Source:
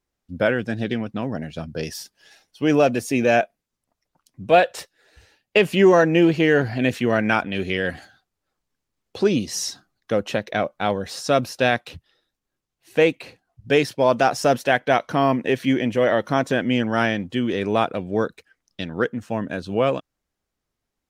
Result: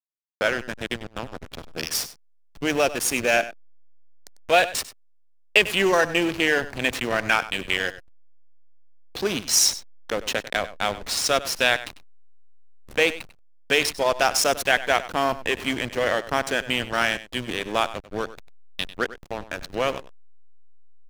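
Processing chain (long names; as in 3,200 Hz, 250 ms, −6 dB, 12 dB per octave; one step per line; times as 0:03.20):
noise gate with hold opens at −51 dBFS
spectral tilt +4.5 dB per octave
in parallel at +1 dB: downward compressor 6 to 1, threshold −32 dBFS, peak gain reduction 20.5 dB
on the sum: bit reduction 10 bits
slack as between gear wheels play −17.5 dBFS
on a send: single-tap delay 97 ms −15.5 dB
on the sum: level −2.5 dB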